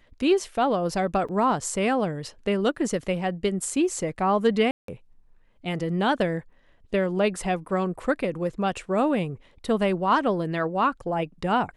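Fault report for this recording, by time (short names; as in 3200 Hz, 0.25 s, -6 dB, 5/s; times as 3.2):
1.28–1.29 gap 5.9 ms
4.71–4.88 gap 0.173 s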